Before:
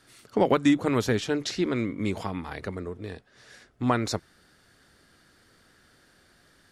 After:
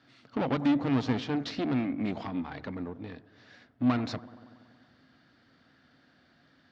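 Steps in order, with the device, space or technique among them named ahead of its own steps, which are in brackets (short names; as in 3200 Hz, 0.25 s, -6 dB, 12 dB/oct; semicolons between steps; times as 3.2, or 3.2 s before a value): analogue delay pedal into a guitar amplifier (analogue delay 94 ms, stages 1024, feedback 72%, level -20.5 dB; tube stage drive 26 dB, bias 0.7; speaker cabinet 81–4600 Hz, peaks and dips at 140 Hz +5 dB, 260 Hz +10 dB, 400 Hz -6 dB, 700 Hz +4 dB)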